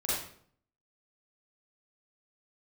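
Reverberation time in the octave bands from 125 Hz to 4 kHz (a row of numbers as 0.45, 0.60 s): 0.75, 0.70, 0.65, 0.55, 0.50, 0.45 s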